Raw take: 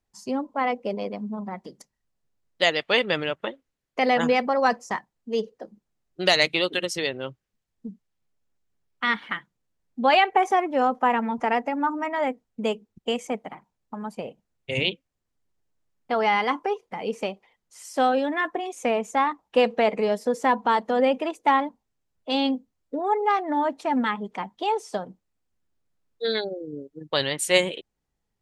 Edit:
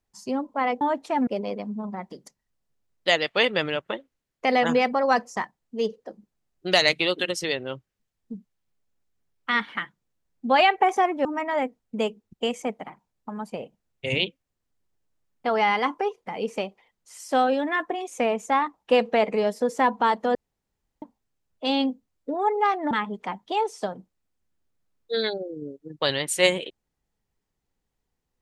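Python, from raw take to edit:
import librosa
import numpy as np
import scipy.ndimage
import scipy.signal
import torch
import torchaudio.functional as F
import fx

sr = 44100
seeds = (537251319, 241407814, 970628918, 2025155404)

y = fx.edit(x, sr, fx.cut(start_s=10.79, length_s=1.11),
    fx.room_tone_fill(start_s=21.0, length_s=0.67),
    fx.move(start_s=23.56, length_s=0.46, to_s=0.81), tone=tone)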